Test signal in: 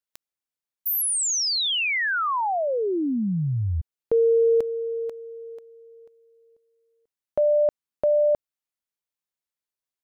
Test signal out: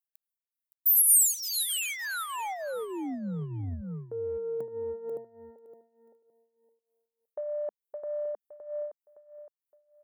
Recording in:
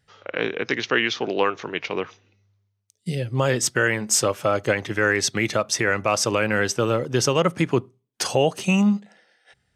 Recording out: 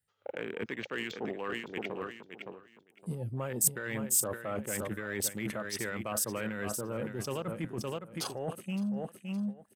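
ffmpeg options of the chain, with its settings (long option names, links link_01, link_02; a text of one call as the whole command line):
ffmpeg -i in.wav -af "adynamicequalizer=threshold=0.00631:dfrequency=210:dqfactor=5.1:tfrequency=210:tqfactor=5.1:attack=5:release=100:ratio=0.375:range=3.5:mode=boostabove:tftype=bell,afwtdn=0.0355,acontrast=26,aecho=1:1:565|1130|1695:0.282|0.0592|0.0124,tremolo=f=3.3:d=0.79,areverse,acompressor=threshold=-24dB:ratio=12:attack=2.5:release=136:knee=1:detection=peak,areverse,aexciter=amount=12.3:drive=1.9:freq=8200,volume=-6.5dB" out.wav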